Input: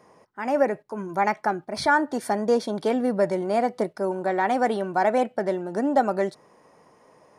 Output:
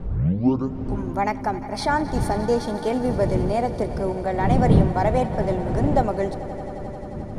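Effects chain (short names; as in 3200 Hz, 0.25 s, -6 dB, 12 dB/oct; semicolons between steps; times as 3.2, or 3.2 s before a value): tape start at the beginning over 1.02 s; wind noise 190 Hz -26 dBFS; dynamic EQ 1500 Hz, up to -6 dB, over -41 dBFS, Q 2.2; swelling echo 88 ms, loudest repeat 5, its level -18 dB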